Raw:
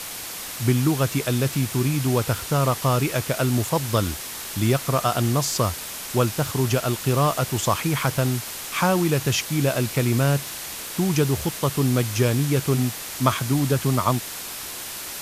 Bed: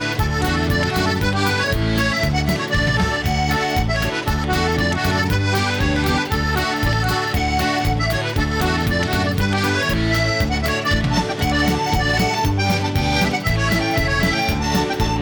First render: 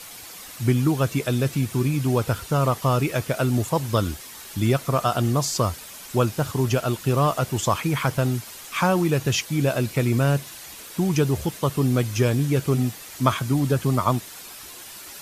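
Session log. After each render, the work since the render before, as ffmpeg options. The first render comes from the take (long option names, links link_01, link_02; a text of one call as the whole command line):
ffmpeg -i in.wav -af "afftdn=noise_reduction=9:noise_floor=-34" out.wav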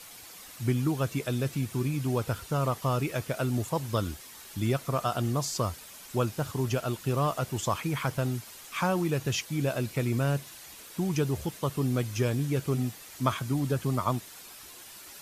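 ffmpeg -i in.wav -af "volume=-7dB" out.wav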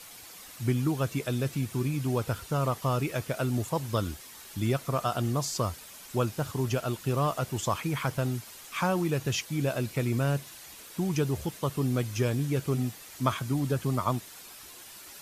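ffmpeg -i in.wav -af anull out.wav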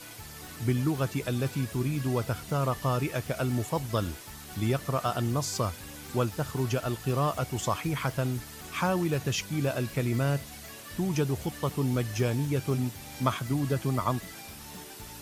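ffmpeg -i in.wav -i bed.wav -filter_complex "[1:a]volume=-27.5dB[link_01];[0:a][link_01]amix=inputs=2:normalize=0" out.wav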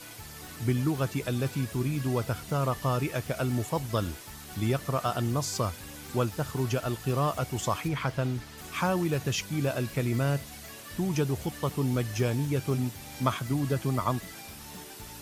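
ffmpeg -i in.wav -filter_complex "[0:a]asettb=1/sr,asplit=3[link_01][link_02][link_03];[link_01]atrim=end=7.884[link_04];[link_02]atrim=start=7.88:end=8.58,asetpts=PTS-STARTPTS,afade=type=in:duration=0.004:curve=qsin,afade=type=out:start_time=0.696:duration=0.004:curve=qsin,acrossover=split=5800[link_05][link_06];[link_06]acompressor=threshold=-56dB:ratio=4:attack=1:release=60[link_07];[link_05][link_07]amix=inputs=2:normalize=0[link_08];[link_03]atrim=start=8.576[link_09];[link_04][link_08]acrossfade=duration=0.004:curve1=hsin:curve2=qsin[link_10];[link_10][link_09]acrossfade=duration=0.004:curve1=qsin:curve2=hsin" out.wav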